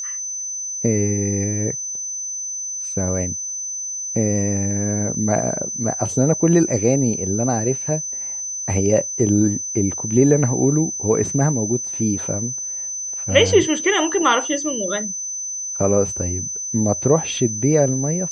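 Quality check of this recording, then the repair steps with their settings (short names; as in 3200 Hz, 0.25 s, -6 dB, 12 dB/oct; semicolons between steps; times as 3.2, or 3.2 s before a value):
tone 6100 Hz -25 dBFS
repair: notch 6100 Hz, Q 30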